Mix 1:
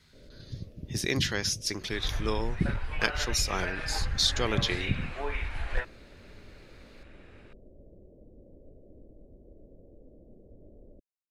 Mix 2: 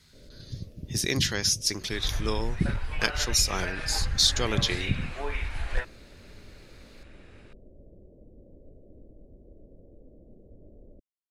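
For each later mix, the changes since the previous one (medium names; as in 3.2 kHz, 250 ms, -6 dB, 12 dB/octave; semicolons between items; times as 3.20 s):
master: add tone controls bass +2 dB, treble +7 dB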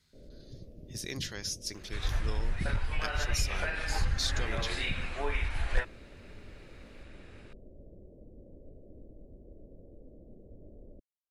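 speech -11.5 dB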